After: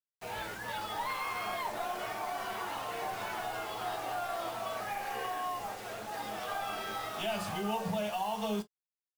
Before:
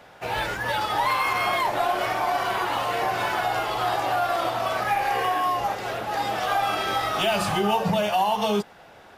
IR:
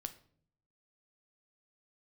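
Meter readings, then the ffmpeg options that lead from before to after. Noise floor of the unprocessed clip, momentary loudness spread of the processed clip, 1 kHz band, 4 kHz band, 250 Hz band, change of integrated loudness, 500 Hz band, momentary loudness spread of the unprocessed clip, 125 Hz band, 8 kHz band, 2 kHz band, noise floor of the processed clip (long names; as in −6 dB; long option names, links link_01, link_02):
−49 dBFS, 5 LU, −12.5 dB, −12.0 dB, −9.5 dB, −12.0 dB, −11.5 dB, 5 LU, −12.0 dB, −8.0 dB, −12.5 dB, below −85 dBFS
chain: -filter_complex "[0:a]acrusher=bits=5:mix=0:aa=0.000001[link_01];[1:a]atrim=start_sample=2205,atrim=end_sample=4410,asetrate=83790,aresample=44100[link_02];[link_01][link_02]afir=irnorm=-1:irlink=0,volume=-4dB"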